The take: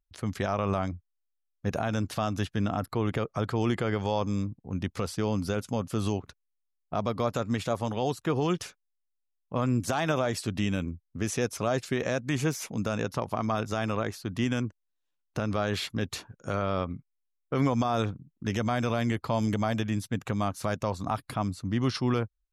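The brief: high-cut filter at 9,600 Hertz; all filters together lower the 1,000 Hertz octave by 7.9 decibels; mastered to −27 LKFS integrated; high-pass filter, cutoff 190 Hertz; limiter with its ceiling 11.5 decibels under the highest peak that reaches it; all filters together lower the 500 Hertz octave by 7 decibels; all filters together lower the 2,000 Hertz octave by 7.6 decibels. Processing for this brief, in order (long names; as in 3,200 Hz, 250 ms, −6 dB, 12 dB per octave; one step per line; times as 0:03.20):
high-pass filter 190 Hz
low-pass filter 9,600 Hz
parametric band 500 Hz −6.5 dB
parametric band 1,000 Hz −6.5 dB
parametric band 2,000 Hz −7.5 dB
level +14.5 dB
brickwall limiter −16.5 dBFS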